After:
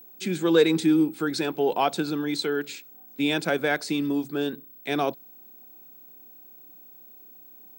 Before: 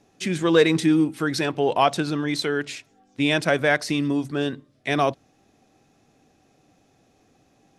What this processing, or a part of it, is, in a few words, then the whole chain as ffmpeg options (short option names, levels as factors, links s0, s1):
old television with a line whistle: -af "highpass=f=180:w=0.5412,highpass=f=180:w=1.3066,equalizer=f=260:t=q:w=4:g=-3,equalizer=f=620:t=q:w=4:g=-8,equalizer=f=1100:t=q:w=4:g=-7,equalizer=f=1900:t=q:w=4:g=-9,equalizer=f=2900:t=q:w=4:g=-6,equalizer=f=5700:t=q:w=4:g=-7,lowpass=f=9000:w=0.5412,lowpass=f=9000:w=1.3066,aeval=exprs='val(0)+0.00501*sin(2*PI*15734*n/s)':c=same"